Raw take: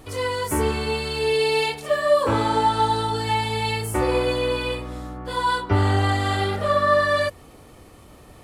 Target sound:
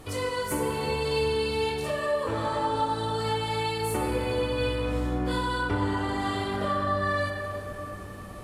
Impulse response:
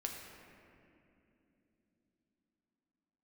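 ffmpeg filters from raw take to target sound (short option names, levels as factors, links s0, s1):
-filter_complex "[0:a]acompressor=threshold=0.0398:ratio=6,asettb=1/sr,asplit=3[s0][s1][s2];[s0]atrim=end=5.094[s3];[s1]atrim=start=5.09:end=5.74,asetpts=PTS-STARTPTS,afade=t=in:d=0.004:c=qsin,afade=t=out:st=0.646:d=0.004:c=qsin,asplit=2[s4][s5];[s5]adelay=27,volume=0.562[s6];[s4][s6]amix=inputs=2:normalize=0,atrim=end_sample=28665[s7];[s2]atrim=start=5.736[s8];[s3][s7]acrossfade=d=0.004:c1=hsin:c2=qsin[s9];[s9][s8]acrossfade=d=0.004:c1=qsin:c2=hsin[s10];[1:a]atrim=start_sample=2205,asetrate=28665,aresample=44100[s11];[s10][s11]afir=irnorm=-1:irlink=0"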